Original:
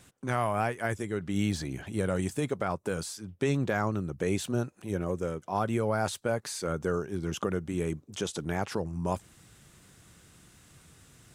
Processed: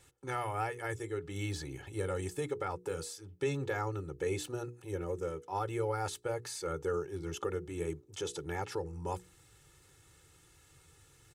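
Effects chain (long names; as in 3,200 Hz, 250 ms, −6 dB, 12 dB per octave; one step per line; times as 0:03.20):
mains-hum notches 60/120/180/240/300/360/420/480 Hz
comb filter 2.3 ms, depth 100%
level −8 dB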